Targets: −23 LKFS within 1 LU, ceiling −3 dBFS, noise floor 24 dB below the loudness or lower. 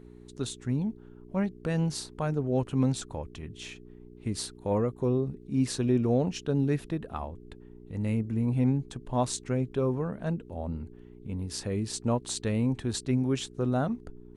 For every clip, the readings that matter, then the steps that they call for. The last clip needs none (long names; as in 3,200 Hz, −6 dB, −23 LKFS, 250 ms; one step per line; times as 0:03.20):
mains hum 60 Hz; hum harmonics up to 420 Hz; level of the hum −48 dBFS; integrated loudness −30.5 LKFS; sample peak −14.5 dBFS; target loudness −23.0 LKFS
→ hum removal 60 Hz, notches 7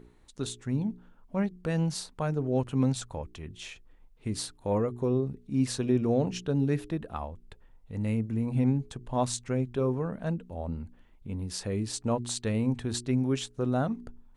mains hum none found; integrated loudness −30.5 LKFS; sample peak −14.5 dBFS; target loudness −23.0 LKFS
→ level +7.5 dB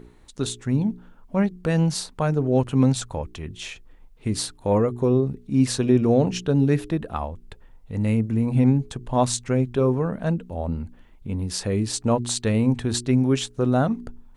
integrated loudness −23.0 LKFS; sample peak −7.0 dBFS; background noise floor −50 dBFS